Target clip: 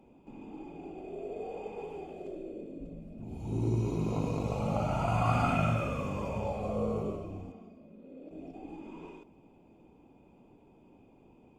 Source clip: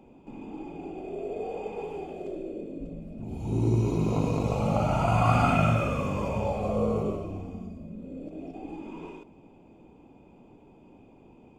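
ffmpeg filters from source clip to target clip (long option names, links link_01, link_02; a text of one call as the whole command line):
ffmpeg -i in.wav -filter_complex "[0:a]asettb=1/sr,asplit=3[link_01][link_02][link_03];[link_01]atrim=end=7.524[link_04];[link_02]atrim=start=7.52:end=8.31,asetpts=PTS-STARTPTS,afade=type=in:duration=0.004:curve=qsin,afade=type=out:start_time=0.786:duration=0.004:curve=qsin,acrossover=split=250 4700:gain=0.141 1 0.251[link_05][link_06][link_07];[link_05][link_06][link_07]amix=inputs=3:normalize=0[link_08];[link_03]atrim=start=8.306[link_09];[link_04][link_08]acrossfade=duration=0.004:curve1=hsin:curve2=qsin[link_10];[link_10][link_09]acrossfade=duration=0.004:curve1=qsin:curve2=hsin,volume=-5.5dB" -ar 48000 -c:a libopus -b:a 64k out.opus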